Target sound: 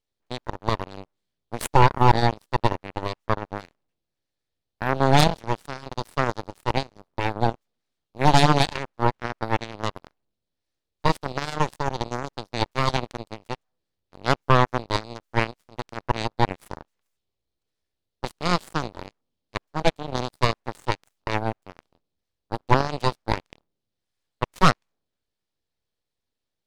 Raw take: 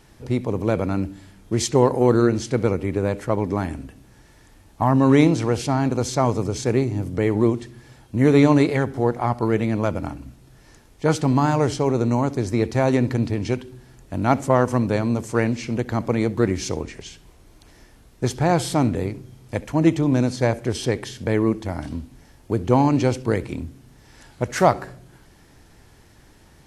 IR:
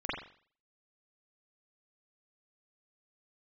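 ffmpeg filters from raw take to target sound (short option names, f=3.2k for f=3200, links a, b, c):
-af "equalizer=f=125:t=o:w=1:g=-4,equalizer=f=250:t=o:w=1:g=-6,equalizer=f=500:t=o:w=1:g=6,equalizer=f=1k:t=o:w=1:g=-8,equalizer=f=2k:t=o:w=1:g=-3,equalizer=f=4k:t=o:w=1:g=11,equalizer=f=8k:t=o:w=1:g=-9,aeval=exprs='abs(val(0))':c=same,aeval=exprs='0.708*(cos(1*acos(clip(val(0)/0.708,-1,1)))-cos(1*PI/2))+0.112*(cos(5*acos(clip(val(0)/0.708,-1,1)))-cos(5*PI/2))+0.0158*(cos(6*acos(clip(val(0)/0.708,-1,1)))-cos(6*PI/2))+0.178*(cos(7*acos(clip(val(0)/0.708,-1,1)))-cos(7*PI/2))+0.0355*(cos(8*acos(clip(val(0)/0.708,-1,1)))-cos(8*PI/2))':c=same,volume=1dB"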